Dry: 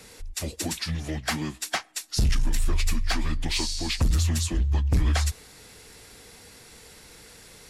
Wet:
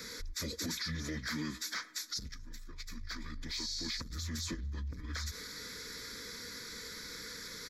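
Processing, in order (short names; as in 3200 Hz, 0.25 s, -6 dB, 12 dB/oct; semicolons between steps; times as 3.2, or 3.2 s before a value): low shelf 470 Hz -4 dB; fixed phaser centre 2800 Hz, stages 6; comb 4.1 ms, depth 31%; negative-ratio compressor -30 dBFS, ratio -0.5; limiter -31 dBFS, peak gain reduction 16 dB; low shelf 100 Hz -9.5 dB; mismatched tape noise reduction decoder only; gain +3 dB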